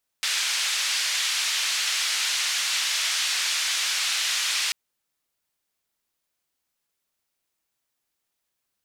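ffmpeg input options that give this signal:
-f lavfi -i "anoisesrc=c=white:d=4.49:r=44100:seed=1,highpass=f=1900,lowpass=f=5400,volume=-12.9dB"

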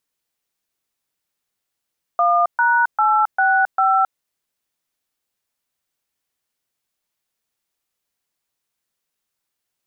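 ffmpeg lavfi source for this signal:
-f lavfi -i "aevalsrc='0.168*clip(min(mod(t,0.398),0.268-mod(t,0.398))/0.002,0,1)*(eq(floor(t/0.398),0)*(sin(2*PI*697*mod(t,0.398))+sin(2*PI*1209*mod(t,0.398)))+eq(floor(t/0.398),1)*(sin(2*PI*941*mod(t,0.398))+sin(2*PI*1477*mod(t,0.398)))+eq(floor(t/0.398),2)*(sin(2*PI*852*mod(t,0.398))+sin(2*PI*1336*mod(t,0.398)))+eq(floor(t/0.398),3)*(sin(2*PI*770*mod(t,0.398))+sin(2*PI*1477*mod(t,0.398)))+eq(floor(t/0.398),4)*(sin(2*PI*770*mod(t,0.398))+sin(2*PI*1336*mod(t,0.398))))':d=1.99:s=44100"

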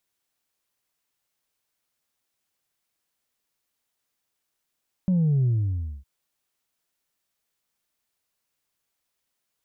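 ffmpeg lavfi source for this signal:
-f lavfi -i "aevalsrc='0.119*clip((0.96-t)/0.59,0,1)*tanh(1.12*sin(2*PI*190*0.96/log(65/190)*(exp(log(65/190)*t/0.96)-1)))/tanh(1.12)':d=0.96:s=44100"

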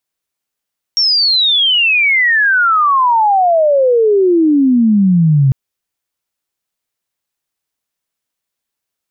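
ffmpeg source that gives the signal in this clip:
-f lavfi -i "aevalsrc='pow(10,(-9+2.5*t/4.55)/20)*sin(2*PI*5600*4.55/log(130/5600)*(exp(log(130/5600)*t/4.55)-1))':d=4.55:s=44100"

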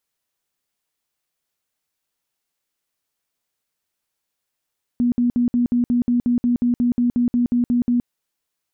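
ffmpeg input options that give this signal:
-f lavfi -i "aevalsrc='0.188*sin(2*PI*242*mod(t,0.18))*lt(mod(t,0.18),29/242)':d=3.06:s=44100"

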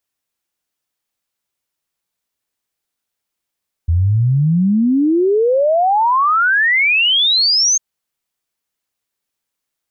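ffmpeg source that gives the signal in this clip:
-f lavfi -i "aevalsrc='0.299*clip(min(t,3.9-t)/0.01,0,1)*sin(2*PI*80*3.9/log(6500/80)*(exp(log(6500/80)*t/3.9)-1))':d=3.9:s=44100"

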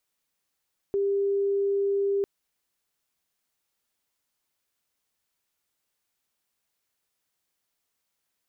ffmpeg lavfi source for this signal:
-f lavfi -i "sine=f=398:d=1.3:r=44100,volume=-3.94dB"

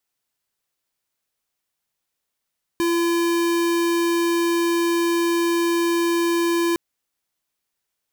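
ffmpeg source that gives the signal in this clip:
-f lavfi -i "aevalsrc='0.1*(2*lt(mod(340*t,1),0.5)-1)':d=3.96:s=44100"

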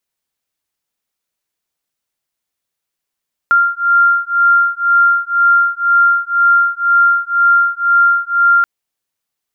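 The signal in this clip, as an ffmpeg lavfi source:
-f lavfi -i "aevalsrc='0.251*(sin(2*PI*1390*t)+sin(2*PI*1392*t))':d=5.13:s=44100"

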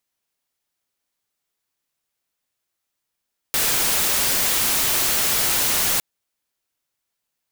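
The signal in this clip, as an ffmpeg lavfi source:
-f lavfi -i "anoisesrc=c=white:a=0.173:d=2.46:r=44100:seed=1"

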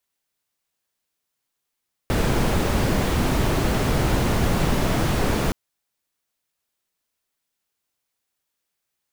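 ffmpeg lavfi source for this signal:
-f lavfi -i "anoisesrc=c=brown:a=0.468:d=3.42:r=44100:seed=1"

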